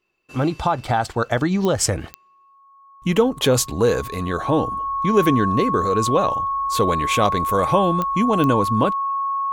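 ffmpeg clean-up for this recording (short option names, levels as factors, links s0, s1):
-af "adeclick=t=4,bandreject=f=1100:w=30"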